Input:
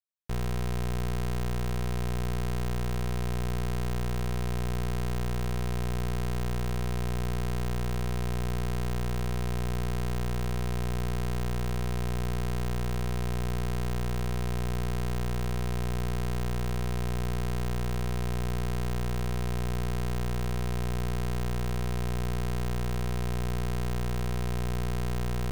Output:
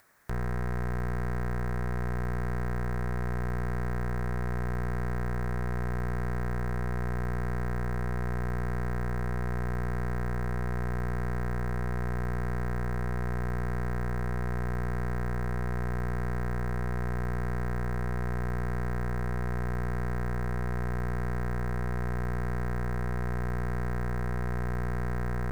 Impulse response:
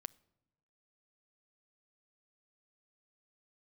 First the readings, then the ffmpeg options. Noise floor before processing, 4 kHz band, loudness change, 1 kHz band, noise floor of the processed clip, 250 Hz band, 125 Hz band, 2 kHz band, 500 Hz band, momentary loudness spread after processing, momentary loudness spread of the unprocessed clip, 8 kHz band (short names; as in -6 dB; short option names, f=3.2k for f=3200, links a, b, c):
-29 dBFS, -14.5 dB, -1.0 dB, +1.0 dB, -30 dBFS, -1.0 dB, -1.0 dB, +3.0 dB, -0.5 dB, 0 LU, 0 LU, -11.0 dB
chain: -af "highshelf=f=2.3k:t=q:w=3:g=-9,acompressor=mode=upward:threshold=-34dB:ratio=2.5,volume=-1dB"